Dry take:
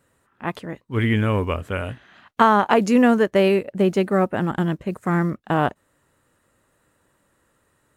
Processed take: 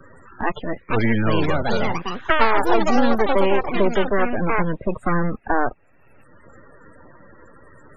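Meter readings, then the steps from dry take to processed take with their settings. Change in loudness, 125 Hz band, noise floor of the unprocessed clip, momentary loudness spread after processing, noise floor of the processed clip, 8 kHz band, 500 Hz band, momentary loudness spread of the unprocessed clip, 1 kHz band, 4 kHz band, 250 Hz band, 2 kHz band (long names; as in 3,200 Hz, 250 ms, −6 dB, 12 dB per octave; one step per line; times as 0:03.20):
−1.0 dB, −3.0 dB, −67 dBFS, 9 LU, −52 dBFS, can't be measured, −0.5 dB, 14 LU, +0.5 dB, +2.0 dB, −2.5 dB, +2.5 dB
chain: low-shelf EQ 220 Hz −3 dB
half-wave rectification
spectral peaks only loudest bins 32
delay with pitch and tempo change per echo 602 ms, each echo +6 semitones, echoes 2
multiband upward and downward compressor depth 70%
level +4.5 dB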